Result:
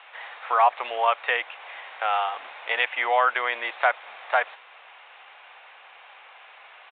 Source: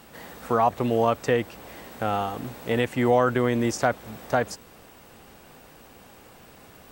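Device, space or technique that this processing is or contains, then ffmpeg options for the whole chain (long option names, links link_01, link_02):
musical greeting card: -af "aresample=8000,aresample=44100,highpass=frequency=750:width=0.5412,highpass=frequency=750:width=1.3066,equalizer=frequency=2300:width_type=o:width=0.48:gain=5.5,volume=5dB"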